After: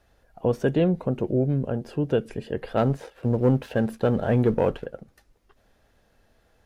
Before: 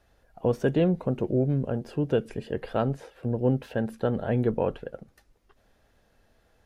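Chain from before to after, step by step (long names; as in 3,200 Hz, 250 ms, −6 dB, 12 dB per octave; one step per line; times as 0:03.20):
0:02.77–0:04.86: leveller curve on the samples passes 1
level +1.5 dB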